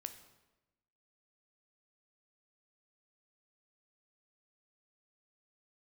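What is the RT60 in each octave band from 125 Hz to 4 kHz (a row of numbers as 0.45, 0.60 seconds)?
1.2, 1.2, 1.1, 0.95, 0.90, 0.80 seconds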